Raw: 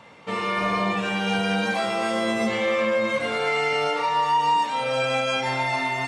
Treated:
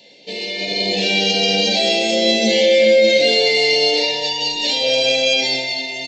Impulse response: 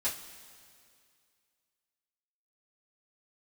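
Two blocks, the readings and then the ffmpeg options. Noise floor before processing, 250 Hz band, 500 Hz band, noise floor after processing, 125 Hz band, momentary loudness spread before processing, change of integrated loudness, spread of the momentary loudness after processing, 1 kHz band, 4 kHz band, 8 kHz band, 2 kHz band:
-30 dBFS, +4.0 dB, +9.5 dB, -28 dBFS, n/a, 3 LU, +8.5 dB, 8 LU, -6.0 dB, +16.0 dB, +13.0 dB, +5.5 dB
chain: -filter_complex "[0:a]highpass=370,equalizer=f=4.3k:t=o:w=0.42:g=12,acontrast=87,alimiter=limit=-13dB:level=0:latency=1:release=21,dynaudnorm=f=130:g=11:m=11.5dB,asplit=2[a][b];[1:a]atrim=start_sample=2205[c];[b][c]afir=irnorm=-1:irlink=0,volume=-6dB[d];[a][d]amix=inputs=2:normalize=0,aresample=16000,aresample=44100,asuperstop=centerf=1200:order=4:qfactor=0.53,volume=-3.5dB"

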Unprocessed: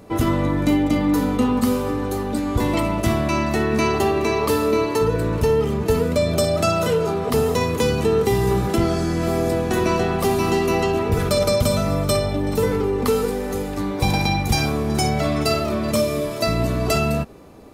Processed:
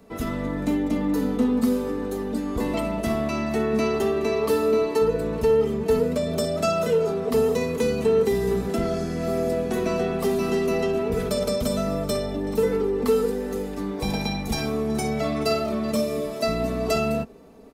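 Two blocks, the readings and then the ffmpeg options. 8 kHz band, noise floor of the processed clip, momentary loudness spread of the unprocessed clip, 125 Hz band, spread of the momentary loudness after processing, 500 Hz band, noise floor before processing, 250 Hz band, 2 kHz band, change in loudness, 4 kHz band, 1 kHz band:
-7.0 dB, -32 dBFS, 3 LU, -9.0 dB, 6 LU, -2.0 dB, -26 dBFS, -3.5 dB, -6.5 dB, -4.0 dB, -6.5 dB, -7.0 dB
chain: -filter_complex "[0:a]acrossover=split=210|740|3100[a][b][c][d];[b]dynaudnorm=f=340:g=3:m=5dB[e];[a][e][c][d]amix=inputs=4:normalize=0,asoftclip=type=hard:threshold=-7.5dB,aecho=1:1:4.5:0.59,volume=-8.5dB"

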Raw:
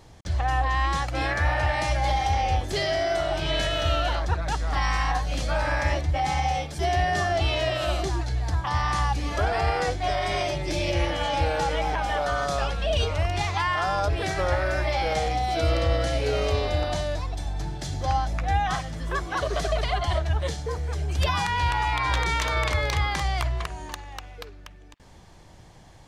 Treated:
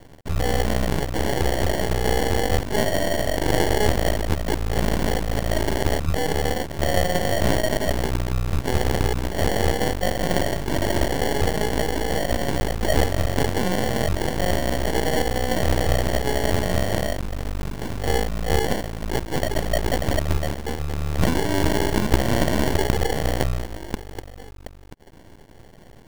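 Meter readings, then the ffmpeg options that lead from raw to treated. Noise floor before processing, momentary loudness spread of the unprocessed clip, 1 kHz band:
-48 dBFS, 6 LU, -2.5 dB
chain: -af "equalizer=f=3.6k:t=o:w=0.44:g=14.5,acrusher=samples=35:mix=1:aa=0.000001,aeval=exprs='max(val(0),0)':c=same,volume=5.5dB"

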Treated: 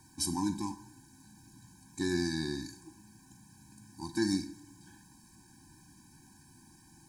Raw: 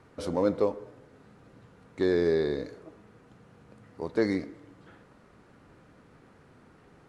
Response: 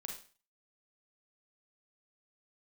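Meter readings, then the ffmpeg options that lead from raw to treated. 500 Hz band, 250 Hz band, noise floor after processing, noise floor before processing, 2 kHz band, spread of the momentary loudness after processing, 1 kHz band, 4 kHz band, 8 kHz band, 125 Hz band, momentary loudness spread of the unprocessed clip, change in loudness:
-14.5 dB, -2.5 dB, -60 dBFS, -58 dBFS, -3.0 dB, 18 LU, -3.0 dB, +5.0 dB, n/a, -1.5 dB, 16 LU, -6.0 dB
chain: -filter_complex "[0:a]aexciter=amount=13.9:drive=2.4:freq=4.6k,asplit=2[a][b];[1:a]atrim=start_sample=2205[c];[b][c]afir=irnorm=-1:irlink=0,volume=-3.5dB[d];[a][d]amix=inputs=2:normalize=0,afftfilt=real='re*eq(mod(floor(b*sr/1024/370),2),0)':imag='im*eq(mod(floor(b*sr/1024/370),2),0)':win_size=1024:overlap=0.75,volume=-4.5dB"

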